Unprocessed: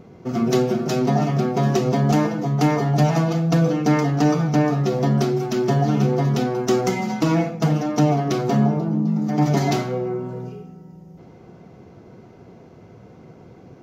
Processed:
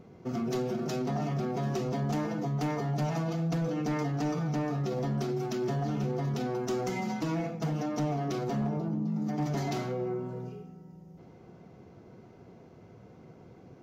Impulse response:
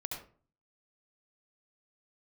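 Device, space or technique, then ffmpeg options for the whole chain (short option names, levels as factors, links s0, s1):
clipper into limiter: -af "asoftclip=type=hard:threshold=0.237,alimiter=limit=0.133:level=0:latency=1:release=27,volume=0.422"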